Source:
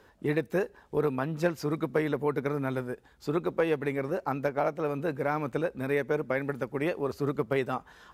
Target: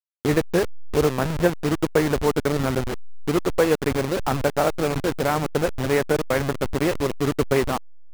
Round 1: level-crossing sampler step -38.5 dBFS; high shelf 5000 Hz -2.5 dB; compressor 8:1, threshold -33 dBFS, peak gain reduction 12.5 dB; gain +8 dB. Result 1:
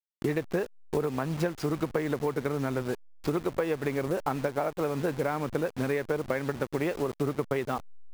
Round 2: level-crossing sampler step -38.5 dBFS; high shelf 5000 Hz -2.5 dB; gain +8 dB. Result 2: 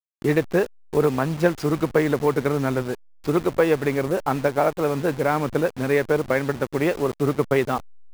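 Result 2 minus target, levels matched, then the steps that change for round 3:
level-crossing sampler: distortion -11 dB
change: level-crossing sampler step -28 dBFS

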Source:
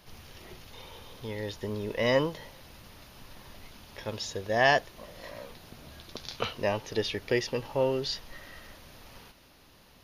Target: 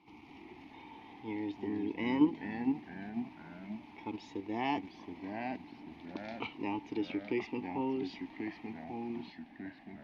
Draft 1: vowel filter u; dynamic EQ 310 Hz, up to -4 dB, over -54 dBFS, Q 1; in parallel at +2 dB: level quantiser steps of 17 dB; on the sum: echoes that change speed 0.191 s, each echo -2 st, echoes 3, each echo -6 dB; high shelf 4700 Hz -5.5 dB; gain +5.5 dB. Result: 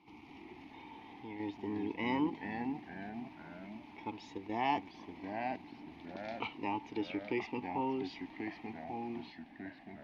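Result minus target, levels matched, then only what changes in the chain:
1000 Hz band +4.5 dB
change: dynamic EQ 840 Hz, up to -4 dB, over -54 dBFS, Q 1

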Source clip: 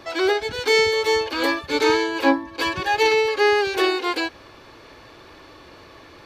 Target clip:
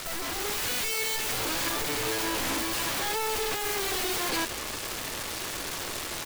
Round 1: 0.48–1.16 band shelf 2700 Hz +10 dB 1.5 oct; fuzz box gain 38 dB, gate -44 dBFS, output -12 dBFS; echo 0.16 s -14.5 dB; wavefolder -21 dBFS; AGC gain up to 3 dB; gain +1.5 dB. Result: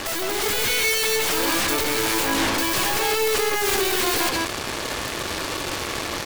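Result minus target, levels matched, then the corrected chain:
wavefolder: distortion -20 dB
0.48–1.16 band shelf 2700 Hz +10 dB 1.5 oct; fuzz box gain 38 dB, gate -44 dBFS, output -12 dBFS; echo 0.16 s -14.5 dB; wavefolder -29.5 dBFS; AGC gain up to 3 dB; gain +1.5 dB

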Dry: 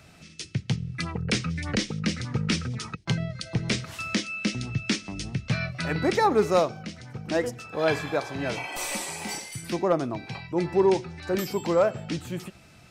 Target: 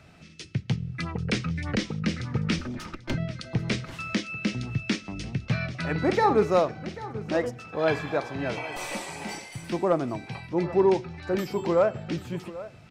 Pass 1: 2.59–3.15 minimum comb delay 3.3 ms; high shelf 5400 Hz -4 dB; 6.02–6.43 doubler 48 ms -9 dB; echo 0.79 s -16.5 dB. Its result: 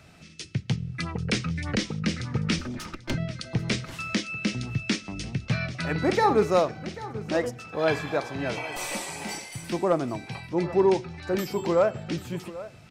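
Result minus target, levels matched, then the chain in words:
8000 Hz band +4.5 dB
2.59–3.15 minimum comb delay 3.3 ms; high shelf 5400 Hz -12 dB; 6.02–6.43 doubler 48 ms -9 dB; echo 0.79 s -16.5 dB

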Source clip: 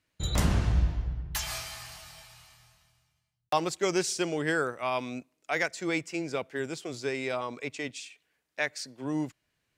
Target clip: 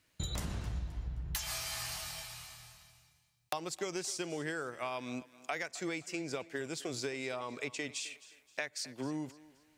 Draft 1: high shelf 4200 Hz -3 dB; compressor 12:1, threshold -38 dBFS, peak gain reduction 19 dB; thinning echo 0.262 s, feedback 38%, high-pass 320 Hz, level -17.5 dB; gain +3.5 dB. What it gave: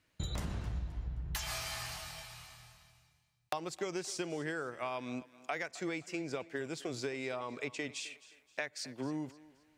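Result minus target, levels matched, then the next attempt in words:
8000 Hz band -3.5 dB
high shelf 4200 Hz +5 dB; compressor 12:1, threshold -38 dBFS, peak gain reduction 19 dB; thinning echo 0.262 s, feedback 38%, high-pass 320 Hz, level -17.5 dB; gain +3.5 dB

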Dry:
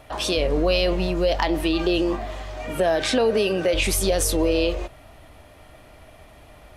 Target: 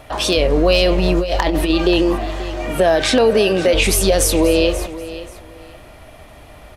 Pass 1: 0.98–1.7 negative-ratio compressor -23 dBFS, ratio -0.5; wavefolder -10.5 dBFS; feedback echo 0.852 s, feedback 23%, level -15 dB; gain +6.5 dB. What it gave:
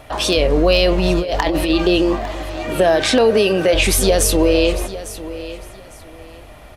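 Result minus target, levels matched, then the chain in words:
echo 0.319 s late
0.98–1.7 negative-ratio compressor -23 dBFS, ratio -0.5; wavefolder -10.5 dBFS; feedback echo 0.533 s, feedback 23%, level -15 dB; gain +6.5 dB

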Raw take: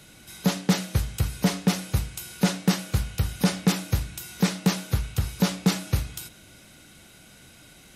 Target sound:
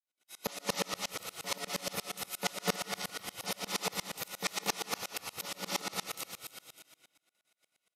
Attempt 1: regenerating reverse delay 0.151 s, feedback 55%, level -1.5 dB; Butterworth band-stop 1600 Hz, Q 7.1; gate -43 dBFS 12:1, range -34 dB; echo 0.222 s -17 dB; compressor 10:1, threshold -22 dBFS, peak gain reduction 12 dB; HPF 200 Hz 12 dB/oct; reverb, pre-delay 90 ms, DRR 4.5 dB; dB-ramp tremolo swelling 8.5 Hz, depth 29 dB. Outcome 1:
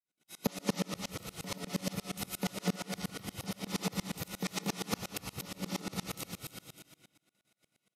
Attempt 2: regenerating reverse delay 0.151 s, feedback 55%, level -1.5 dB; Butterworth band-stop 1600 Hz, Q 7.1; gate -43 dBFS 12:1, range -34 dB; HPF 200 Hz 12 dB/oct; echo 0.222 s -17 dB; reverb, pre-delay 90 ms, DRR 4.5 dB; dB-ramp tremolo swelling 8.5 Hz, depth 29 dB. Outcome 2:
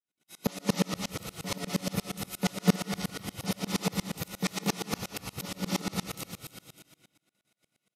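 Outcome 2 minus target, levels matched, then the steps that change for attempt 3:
250 Hz band +10.5 dB
change: HPF 540 Hz 12 dB/oct

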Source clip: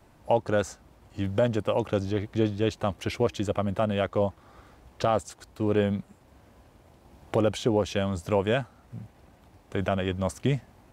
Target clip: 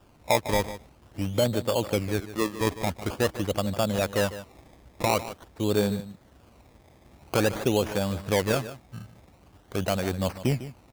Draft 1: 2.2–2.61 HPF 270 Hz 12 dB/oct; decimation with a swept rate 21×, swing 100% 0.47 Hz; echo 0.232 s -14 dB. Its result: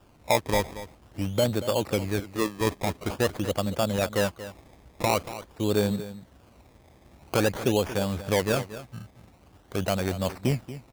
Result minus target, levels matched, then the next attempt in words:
echo 81 ms late
2.2–2.61 HPF 270 Hz 12 dB/oct; decimation with a swept rate 21×, swing 100% 0.47 Hz; echo 0.151 s -14 dB

